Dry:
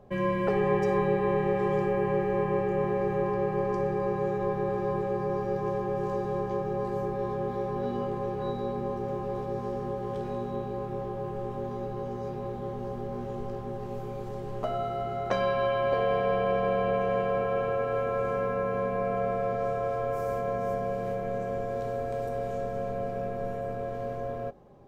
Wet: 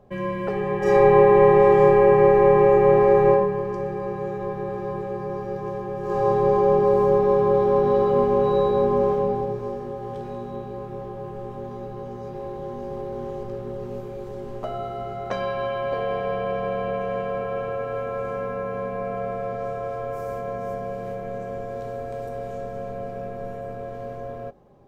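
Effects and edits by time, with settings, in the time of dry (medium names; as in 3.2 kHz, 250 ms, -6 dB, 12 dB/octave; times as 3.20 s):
0.78–3.29 s: reverb throw, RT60 0.99 s, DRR -8.5 dB
6.01–9.11 s: reverb throw, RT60 2.7 s, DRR -8 dB
11.77–12.86 s: echo throw 570 ms, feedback 80%, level -3.5 dB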